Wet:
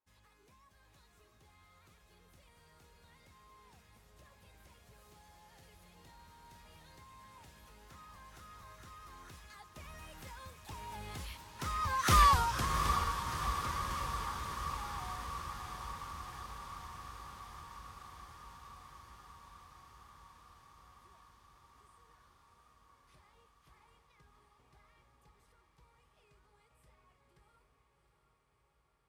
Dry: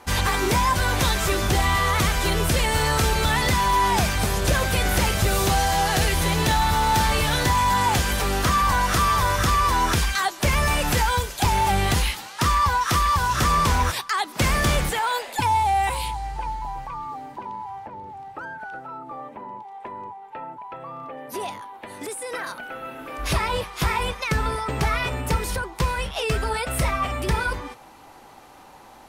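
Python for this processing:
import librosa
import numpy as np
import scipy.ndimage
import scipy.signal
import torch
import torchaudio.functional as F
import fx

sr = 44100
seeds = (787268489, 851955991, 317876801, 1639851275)

y = fx.doppler_pass(x, sr, speed_mps=22, closest_m=2.0, pass_at_s=12.22)
y = fx.echo_diffused(y, sr, ms=713, feedback_pct=75, wet_db=-8)
y = y * 10.0 ** (-2.0 / 20.0)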